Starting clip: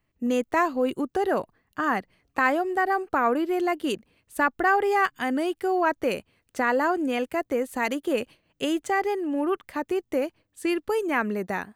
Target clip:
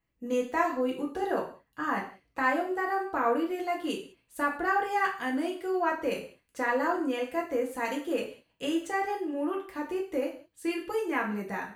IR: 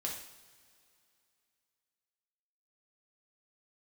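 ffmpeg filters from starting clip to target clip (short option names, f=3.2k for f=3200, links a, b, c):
-filter_complex "[1:a]atrim=start_sample=2205,afade=t=out:st=0.38:d=0.01,atrim=end_sample=17199,asetrate=70560,aresample=44100[a];[0:a][a]afir=irnorm=-1:irlink=0,volume=-2dB"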